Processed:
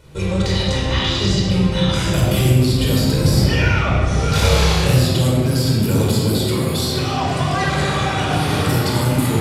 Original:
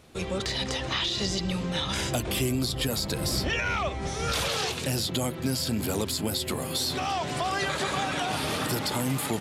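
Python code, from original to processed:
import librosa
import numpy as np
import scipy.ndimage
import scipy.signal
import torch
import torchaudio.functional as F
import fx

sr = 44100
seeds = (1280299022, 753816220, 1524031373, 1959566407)

y = fx.low_shelf(x, sr, hz=250.0, db=6.5)
y = fx.room_flutter(y, sr, wall_m=5.2, rt60_s=0.54, at=(4.32, 4.91))
y = fx.room_shoebox(y, sr, seeds[0], volume_m3=2400.0, walls='mixed', distance_m=4.8)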